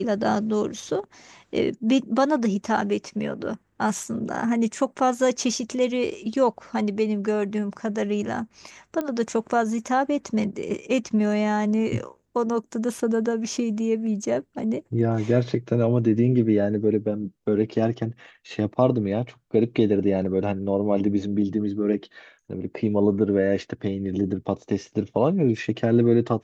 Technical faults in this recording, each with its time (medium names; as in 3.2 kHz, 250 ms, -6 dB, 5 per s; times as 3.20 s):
9.01 s: pop -16 dBFS